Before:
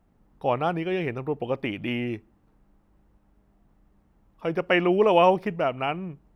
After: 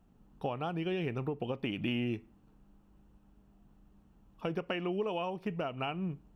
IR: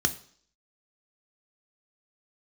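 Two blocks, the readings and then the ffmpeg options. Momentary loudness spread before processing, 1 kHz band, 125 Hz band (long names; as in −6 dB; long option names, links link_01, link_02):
12 LU, −14.0 dB, −5.0 dB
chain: -filter_complex "[0:a]acompressor=threshold=-29dB:ratio=16,asplit=2[link_01][link_02];[link_02]equalizer=frequency=2500:width=0.8:gain=9.5[link_03];[1:a]atrim=start_sample=2205,asetrate=70560,aresample=44100[link_04];[link_03][link_04]afir=irnorm=-1:irlink=0,volume=-20dB[link_05];[link_01][link_05]amix=inputs=2:normalize=0,volume=-1dB"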